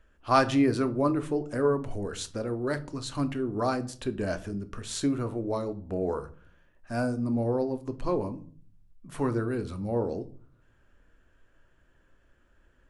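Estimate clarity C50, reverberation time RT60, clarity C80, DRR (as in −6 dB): 17.0 dB, 0.45 s, 22.5 dB, 9.5 dB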